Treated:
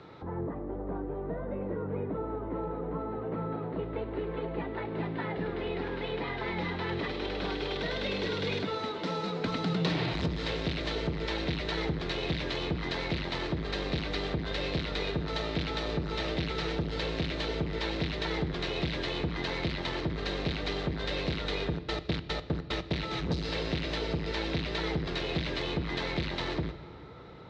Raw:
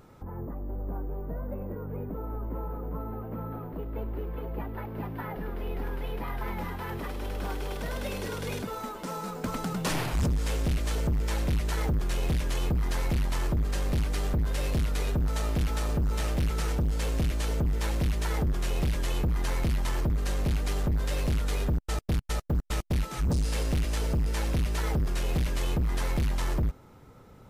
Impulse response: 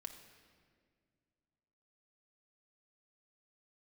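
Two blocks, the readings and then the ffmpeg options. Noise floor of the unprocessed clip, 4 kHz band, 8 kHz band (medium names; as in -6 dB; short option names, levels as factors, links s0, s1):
-51 dBFS, +5.5 dB, -13.0 dB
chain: -filter_complex "[0:a]acrossover=split=280|710|1900[s0][s1][s2][s3];[s0]acompressor=threshold=0.0316:ratio=4[s4];[s1]acompressor=threshold=0.00794:ratio=4[s5];[s2]acompressor=threshold=0.00282:ratio=4[s6];[s3]acompressor=threshold=0.00794:ratio=4[s7];[s4][s5][s6][s7]amix=inputs=4:normalize=0,highpass=120,equalizer=f=230:t=q:w=4:g=-10,equalizer=f=330:t=q:w=4:g=5,equalizer=f=2000:t=q:w=4:g=4,equalizer=f=3900:t=q:w=4:g=9,lowpass=f=4400:w=0.5412,lowpass=f=4400:w=1.3066,asplit=2[s8][s9];[1:a]atrim=start_sample=2205[s10];[s9][s10]afir=irnorm=-1:irlink=0,volume=1.68[s11];[s8][s11]amix=inputs=2:normalize=0"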